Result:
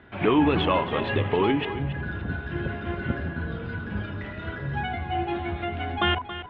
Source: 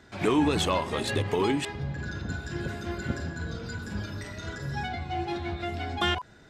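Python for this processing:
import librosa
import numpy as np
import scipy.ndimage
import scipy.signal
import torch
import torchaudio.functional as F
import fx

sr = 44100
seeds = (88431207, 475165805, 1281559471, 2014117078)

y = scipy.signal.sosfilt(scipy.signal.cheby1(4, 1.0, 3100.0, 'lowpass', fs=sr, output='sos'), x)
y = y + 10.0 ** (-12.5 / 20.0) * np.pad(y, (int(276 * sr / 1000.0), 0))[:len(y)]
y = F.gain(torch.from_numpy(y), 4.0).numpy()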